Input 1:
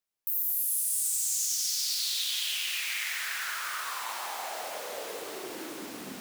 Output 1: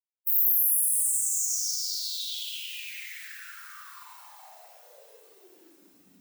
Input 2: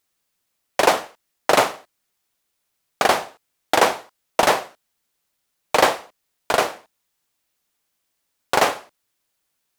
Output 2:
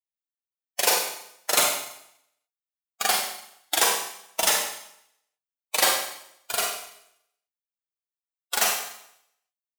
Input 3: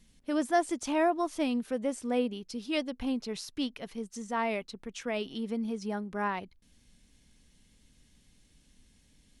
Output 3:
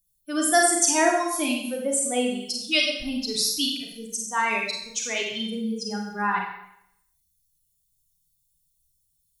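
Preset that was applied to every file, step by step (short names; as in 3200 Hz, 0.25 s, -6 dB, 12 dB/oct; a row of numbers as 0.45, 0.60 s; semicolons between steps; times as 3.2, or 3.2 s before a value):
per-bin expansion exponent 2; pre-emphasis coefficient 0.9; Schroeder reverb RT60 0.74 s, combs from 32 ms, DRR -0.5 dB; match loudness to -24 LUFS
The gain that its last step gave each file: +3.5, +8.0, +23.0 dB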